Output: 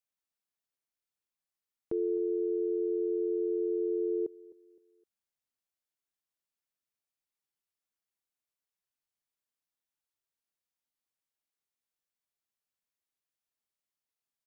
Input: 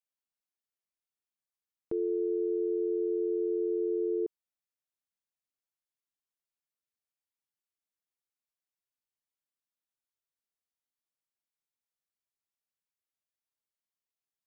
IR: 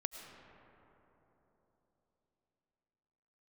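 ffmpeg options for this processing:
-af "aecho=1:1:258|516|774:0.106|0.0371|0.013"

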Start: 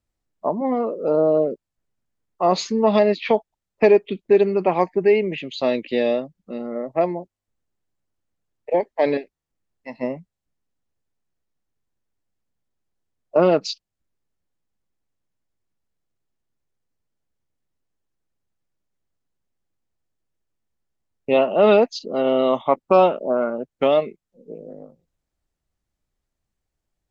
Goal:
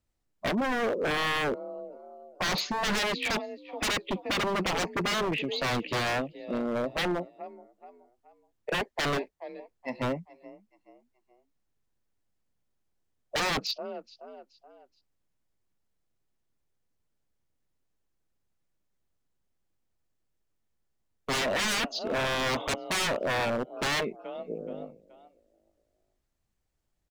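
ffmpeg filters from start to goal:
-filter_complex "[0:a]acrossover=split=5400[a][b];[b]acompressor=threshold=-52dB:ratio=4:attack=1:release=60[c];[a][c]amix=inputs=2:normalize=0,asplit=4[d][e][f][g];[e]adelay=426,afreqshift=37,volume=-22.5dB[h];[f]adelay=852,afreqshift=74,volume=-31.1dB[i];[g]adelay=1278,afreqshift=111,volume=-39.8dB[j];[d][h][i][j]amix=inputs=4:normalize=0,aeval=exprs='0.0708*(abs(mod(val(0)/0.0708+3,4)-2)-1)':c=same"

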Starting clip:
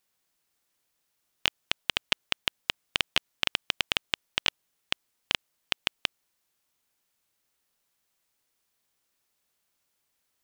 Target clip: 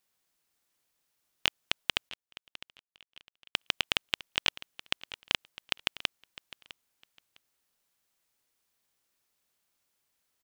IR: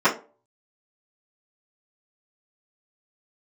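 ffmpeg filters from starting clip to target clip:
-filter_complex "[0:a]asettb=1/sr,asplit=3[a][b][c];[a]atrim=end=2.094[d];[b]atrim=start=2.09:end=3.55,asetpts=PTS-STARTPTS,afade=t=in:d=0.004:c=qsin,afade=t=out:st=1.456:d=0.004:c=qsin,agate=range=-33dB:threshold=-15dB:ratio=3:detection=peak[e];[c]atrim=start=3.546[f];[d][e]acrossfade=d=0.004:c1=hsin:c2=qsin[g];[g][f]acrossfade=d=0.004:c1=qsin:c2=hsin,aecho=1:1:656|1312:0.141|0.0268,volume=-1.5dB"

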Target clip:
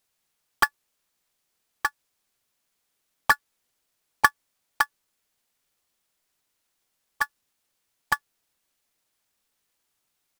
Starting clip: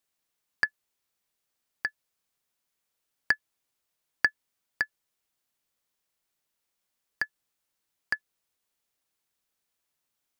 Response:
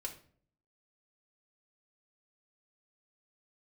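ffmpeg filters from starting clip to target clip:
-filter_complex "[0:a]acrusher=bits=2:mode=log:mix=0:aa=0.000001,asplit=4[a][b][c][d];[b]asetrate=22050,aresample=44100,atempo=2,volume=-8dB[e];[c]asetrate=29433,aresample=44100,atempo=1.49831,volume=-3dB[f];[d]asetrate=37084,aresample=44100,atempo=1.18921,volume=-9dB[g];[a][e][f][g]amix=inputs=4:normalize=0,volume=2.5dB"

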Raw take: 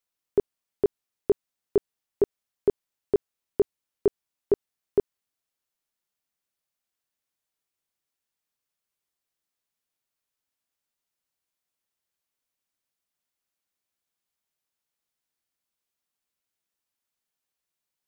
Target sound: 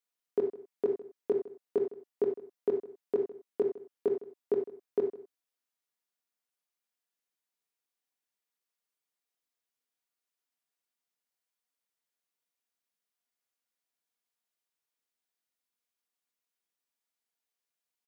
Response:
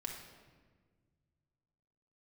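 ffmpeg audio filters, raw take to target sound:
-filter_complex "[0:a]highpass=250,asplit=2[a][b];[b]adelay=157.4,volume=-18dB,highshelf=f=4k:g=-3.54[c];[a][c]amix=inputs=2:normalize=0[d];[1:a]atrim=start_sample=2205,atrim=end_sample=4410[e];[d][e]afir=irnorm=-1:irlink=0,volume=-2dB"

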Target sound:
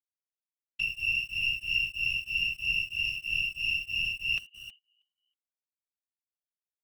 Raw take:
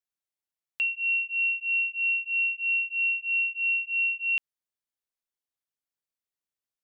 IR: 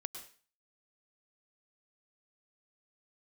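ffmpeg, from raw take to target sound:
-filter_complex "[0:a]asplit=4[a][b][c][d];[b]adelay=319,afreqshift=78,volume=-16dB[e];[c]adelay=638,afreqshift=156,volume=-24.4dB[f];[d]adelay=957,afreqshift=234,volume=-32.8dB[g];[a][e][f][g]amix=inputs=4:normalize=0,asplit=2[h][i];[i]acrusher=bits=4:dc=4:mix=0:aa=0.000001,volume=-5dB[j];[h][j]amix=inputs=2:normalize=0,agate=range=-17dB:threshold=-45dB:ratio=16:detection=peak,afftfilt=real='hypot(re,im)*cos(2*PI*random(0))':imag='hypot(re,im)*sin(2*PI*random(1))':win_size=512:overlap=0.75"

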